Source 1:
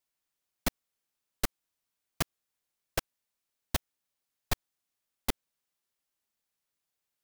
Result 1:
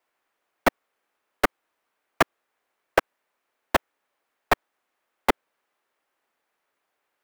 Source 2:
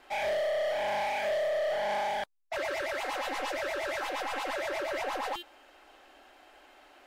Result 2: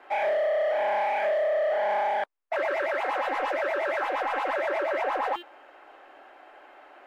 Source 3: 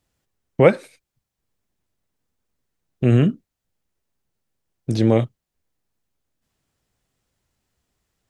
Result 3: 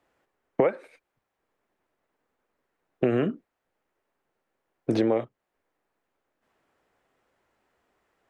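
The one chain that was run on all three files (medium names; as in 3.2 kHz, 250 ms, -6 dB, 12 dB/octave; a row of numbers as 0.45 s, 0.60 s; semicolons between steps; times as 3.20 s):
three-band isolator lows -19 dB, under 300 Hz, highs -18 dB, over 2.3 kHz; compression 16:1, threshold -29 dBFS; normalise loudness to -27 LUFS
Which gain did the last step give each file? +17.5 dB, +7.5 dB, +9.5 dB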